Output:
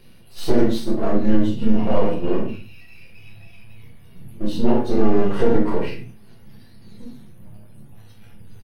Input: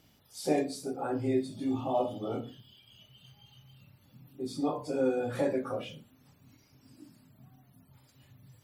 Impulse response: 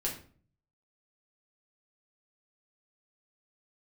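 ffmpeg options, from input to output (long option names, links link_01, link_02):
-filter_complex "[0:a]aeval=exprs='if(lt(val(0),0),0.251*val(0),val(0))':channel_layout=same,asetrate=36028,aresample=44100,atempo=1.22405,equalizer=frequency=7300:width_type=o:width=0.37:gain=-15[link_01];[1:a]atrim=start_sample=2205,atrim=end_sample=6615[link_02];[link_01][link_02]afir=irnorm=-1:irlink=0,alimiter=level_in=14dB:limit=-1dB:release=50:level=0:latency=1,volume=-3dB"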